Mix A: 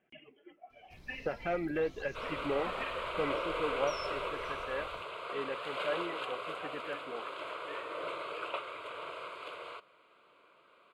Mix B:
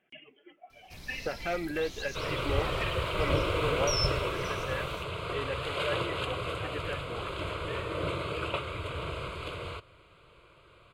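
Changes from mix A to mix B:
first sound +7.5 dB
second sound: remove high-pass filter 640 Hz 12 dB per octave
master: add high-shelf EQ 2,300 Hz +10.5 dB

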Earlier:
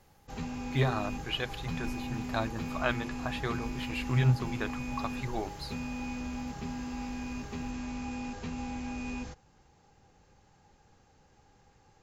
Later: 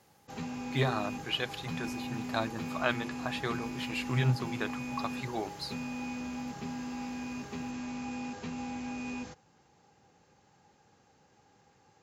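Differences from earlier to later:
speech: add parametric band 6,300 Hz +6 dB 1.2 octaves
master: add high-pass filter 130 Hz 12 dB per octave

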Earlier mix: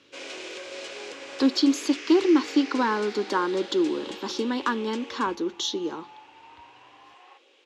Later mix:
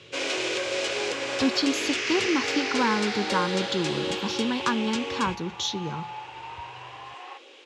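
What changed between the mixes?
speech: add low shelf with overshoot 210 Hz +13 dB, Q 3
first sound +10.0 dB
second sound +10.5 dB

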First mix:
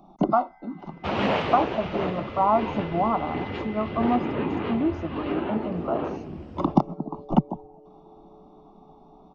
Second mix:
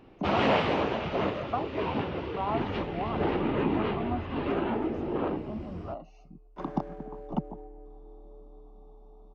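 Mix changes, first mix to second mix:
speech −11.0 dB
first sound: entry −0.80 s
second sound: remove flat-topped band-pass 430 Hz, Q 1

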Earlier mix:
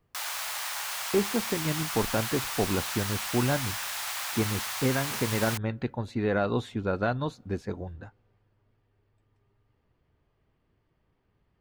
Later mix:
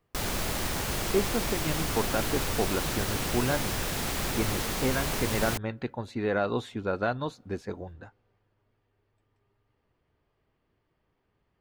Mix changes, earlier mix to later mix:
speech: add bass and treble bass −5 dB, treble 0 dB
background: remove inverse Chebyshev high-pass filter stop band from 240 Hz, stop band 60 dB

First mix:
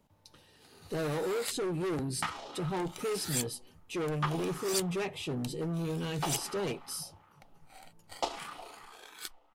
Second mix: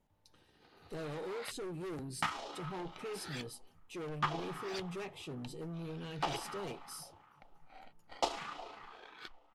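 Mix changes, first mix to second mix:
speech −9.0 dB
first sound: add high-frequency loss of the air 270 metres

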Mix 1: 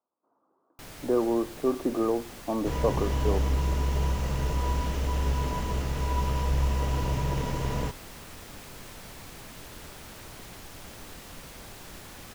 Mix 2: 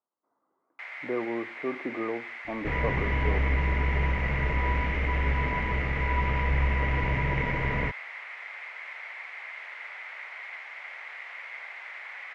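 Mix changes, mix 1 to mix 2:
speech −6.5 dB
first sound: add high-pass filter 660 Hz 24 dB per octave
master: add low-pass with resonance 2,100 Hz, resonance Q 9.5

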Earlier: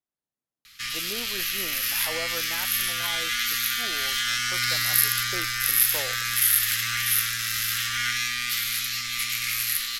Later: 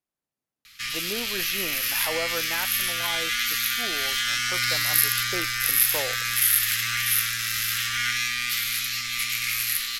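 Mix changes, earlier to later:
speech +4.5 dB
master: add parametric band 2,400 Hz +2.5 dB 0.41 octaves

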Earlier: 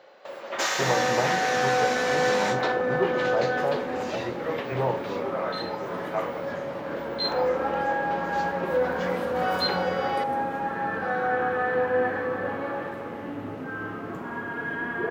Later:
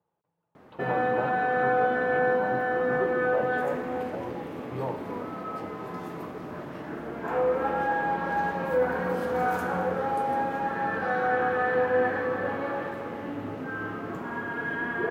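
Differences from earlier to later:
speech −6.0 dB
first sound: muted

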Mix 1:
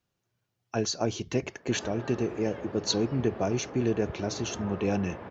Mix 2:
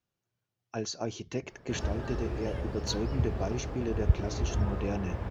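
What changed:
speech −6.0 dB
background: remove band-pass filter 220–3,100 Hz

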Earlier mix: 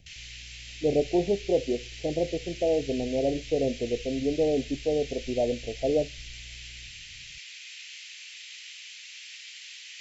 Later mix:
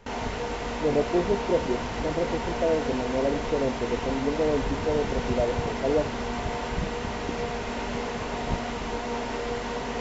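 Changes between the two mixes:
background: remove Butterworth high-pass 2,300 Hz 36 dB per octave
reverb: on, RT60 0.30 s

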